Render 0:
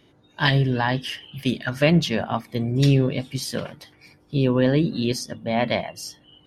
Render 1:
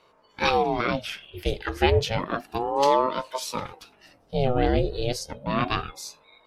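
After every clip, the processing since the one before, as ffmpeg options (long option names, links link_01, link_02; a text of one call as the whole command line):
ffmpeg -i in.wav -af "aeval=exprs='val(0)*sin(2*PI*490*n/s+490*0.6/0.31*sin(2*PI*0.31*n/s))':channel_layout=same" out.wav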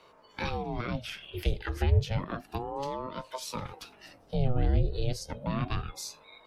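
ffmpeg -i in.wav -filter_complex "[0:a]acrossover=split=170[link_01][link_02];[link_02]acompressor=threshold=-37dB:ratio=5[link_03];[link_01][link_03]amix=inputs=2:normalize=0,volume=2dB" out.wav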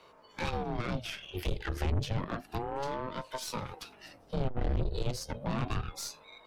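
ffmpeg -i in.wav -af "aeval=exprs='(tanh(31.6*val(0)+0.6)-tanh(0.6))/31.6':channel_layout=same,volume=3dB" out.wav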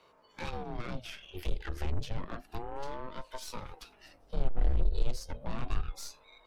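ffmpeg -i in.wav -af "asubboost=boost=6.5:cutoff=50,volume=-5dB" out.wav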